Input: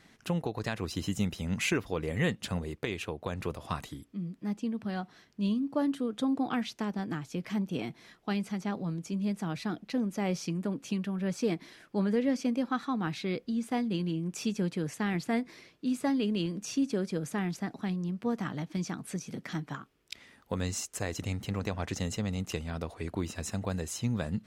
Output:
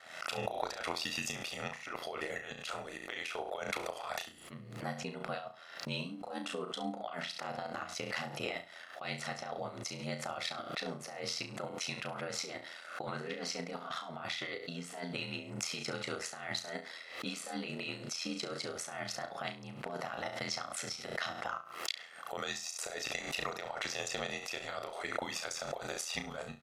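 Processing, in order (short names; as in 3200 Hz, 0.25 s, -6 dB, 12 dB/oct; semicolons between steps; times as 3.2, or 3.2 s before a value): HPF 740 Hz 12 dB/oct; high shelf 2400 Hz -7 dB; comb 1.4 ms, depth 53%; dynamic EQ 4700 Hz, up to +4 dB, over -58 dBFS, Q 1.2; negative-ratio compressor -45 dBFS, ratio -1; transient shaper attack +4 dB, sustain -5 dB; ring modulator 45 Hz; speed mistake 48 kHz file played as 44.1 kHz; flutter echo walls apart 5.9 m, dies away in 0.29 s; backwards sustainer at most 72 dB/s; gain +6 dB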